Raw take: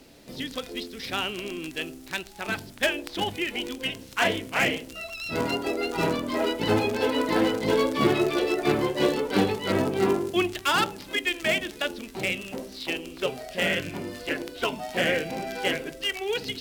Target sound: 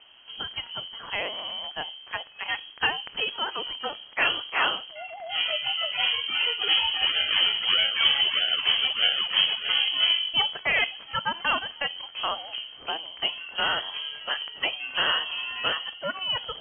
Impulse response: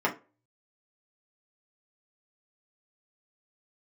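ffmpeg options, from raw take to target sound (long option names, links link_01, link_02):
-filter_complex "[0:a]highpass=frequency=93:width=0.5412,highpass=frequency=93:width=1.3066,asettb=1/sr,asplit=3[link_01][link_02][link_03];[link_01]atrim=end=7.064[link_04];[link_02]atrim=start=7.06:end=9.69,asetpts=PTS-STARTPTS,afade=type=in:duration=0.004:curve=qsin,afade=type=out:start_time=2.626:duration=0.004:curve=qsin,acrusher=samples=15:mix=1:aa=0.000001:lfo=1:lforange=9:lforate=1.6[link_05];[link_03]atrim=start=9.686[link_06];[link_04][link_05]acrossfade=duration=0.004:curve1=hsin:curve2=qsin[link_07];[link_07][link_06]acrossfade=duration=0.004:curve1=qsin:curve2=hsin,lowpass=frequency=2900:width_type=q:width=0.5098,lowpass=frequency=2900:width_type=q:width=0.6013,lowpass=frequency=2900:width_type=q:width=0.9,lowpass=frequency=2900:width_type=q:width=2.563,afreqshift=-3400"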